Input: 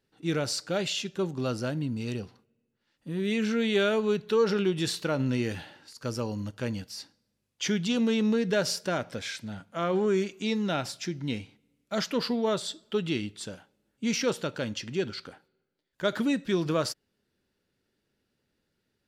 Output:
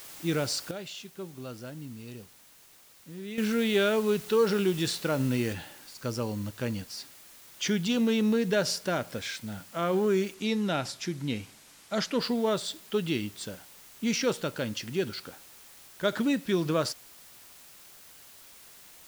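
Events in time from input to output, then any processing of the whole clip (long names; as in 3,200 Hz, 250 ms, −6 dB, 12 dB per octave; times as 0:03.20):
0:00.71–0:03.38: clip gain −10.5 dB
0:05.53: noise floor change −46 dB −52 dB
0:10.34–0:12.21: low-pass filter 11,000 Hz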